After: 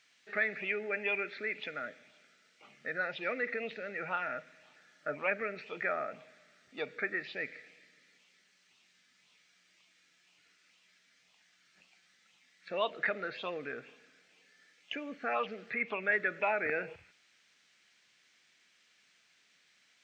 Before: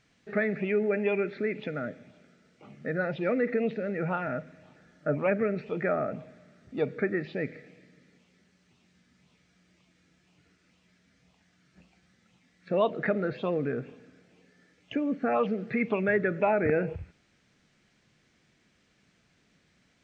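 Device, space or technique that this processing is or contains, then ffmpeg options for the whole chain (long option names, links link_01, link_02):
filter by subtraction: -filter_complex "[0:a]asettb=1/sr,asplit=3[link_01][link_02][link_03];[link_01]atrim=end=15.454[link_04];[link_02]atrim=start=15.45:end=16.12,asetpts=PTS-STARTPTS,afade=type=in:duration=0.004:curve=qsin,afade=type=out:start_time=0.666:duration=0.004:curve=qsin,acrossover=split=2600[link_05][link_06];[link_06]acompressor=threshold=-55dB:ratio=4:attack=1:release=60[link_07];[link_05][link_07]amix=inputs=2:normalize=0[link_08];[link_03]atrim=start=16.116[link_09];[link_04][link_08]acrossfade=duration=0.004:curve1=hsin:curve2=qsin[link_10];[link_10][link_09]acrossfade=duration=0.004:curve1=qsin:curve2=hsin,asplit=2[link_11][link_12];[link_12]lowpass=2800,volume=-1[link_13];[link_11][link_13]amix=inputs=2:normalize=0,volume=2dB"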